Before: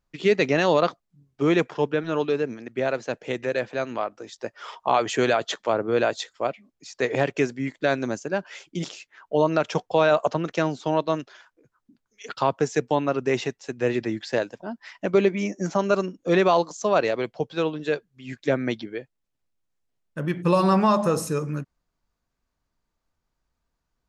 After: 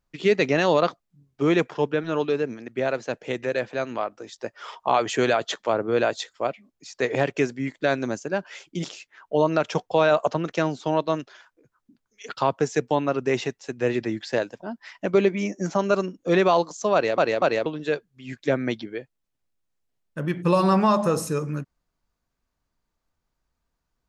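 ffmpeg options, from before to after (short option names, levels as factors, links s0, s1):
-filter_complex "[0:a]asplit=4[s0][s1][s2][s3];[s0]atrim=end=17.182[s4];[s1]atrim=start=16.938:end=17.182[s5];[s2]atrim=start=16.938:end=17.182[s6];[s3]atrim=start=17.658[s7];[s4][s5]acrossfade=d=0.004:c1=hsin:c2=hsin[s8];[s8][s6]acrossfade=d=0.004:c1=hsin:c2=hsin[s9];[s9][s7]acrossfade=d=0.004:c1=hsin:c2=hsin"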